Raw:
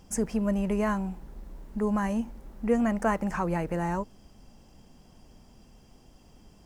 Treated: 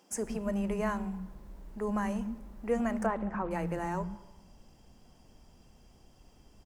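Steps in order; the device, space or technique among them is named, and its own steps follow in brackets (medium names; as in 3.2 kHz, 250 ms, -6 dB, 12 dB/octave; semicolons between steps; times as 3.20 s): 3.06–3.51 s: Bessel low-pass 1.4 kHz, order 2; bands offset in time highs, lows 120 ms, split 230 Hz; saturated reverb return (on a send at -13 dB: reverberation RT60 1.2 s, pre-delay 3 ms + saturation -26 dBFS, distortion -13 dB); on the sum: trim -3.5 dB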